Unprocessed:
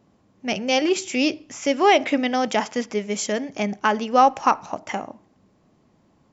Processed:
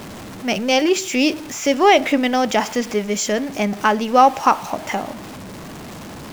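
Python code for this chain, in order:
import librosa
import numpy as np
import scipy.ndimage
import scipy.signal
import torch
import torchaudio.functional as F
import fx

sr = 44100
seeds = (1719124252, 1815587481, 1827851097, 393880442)

y = x + 0.5 * 10.0 ** (-32.0 / 20.0) * np.sign(x)
y = y * librosa.db_to_amplitude(3.0)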